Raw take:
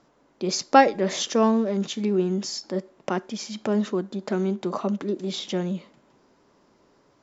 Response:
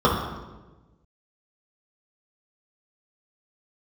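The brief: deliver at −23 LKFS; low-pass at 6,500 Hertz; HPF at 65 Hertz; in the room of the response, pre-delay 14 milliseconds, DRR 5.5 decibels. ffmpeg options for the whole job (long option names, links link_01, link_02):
-filter_complex "[0:a]highpass=65,lowpass=6500,asplit=2[link_01][link_02];[1:a]atrim=start_sample=2205,adelay=14[link_03];[link_02][link_03]afir=irnorm=-1:irlink=0,volume=-27dB[link_04];[link_01][link_04]amix=inputs=2:normalize=0"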